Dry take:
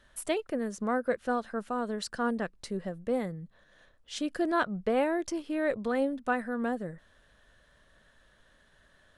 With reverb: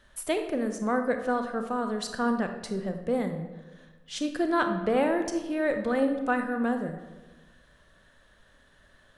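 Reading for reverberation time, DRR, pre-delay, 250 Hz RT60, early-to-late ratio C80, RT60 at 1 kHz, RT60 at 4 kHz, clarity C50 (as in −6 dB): 1.2 s, 6.0 dB, 29 ms, 1.4 s, 9.5 dB, 1.1 s, 0.70 s, 7.5 dB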